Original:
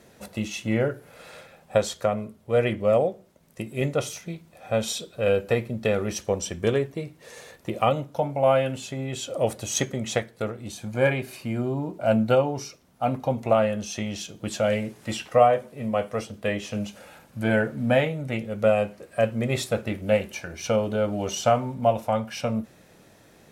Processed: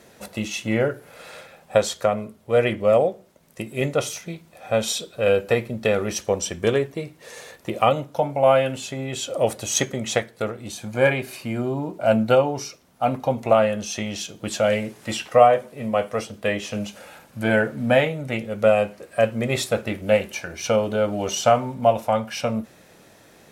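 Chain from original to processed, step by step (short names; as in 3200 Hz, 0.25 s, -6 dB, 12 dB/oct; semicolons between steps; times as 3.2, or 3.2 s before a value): low shelf 270 Hz -5.5 dB; gain +4.5 dB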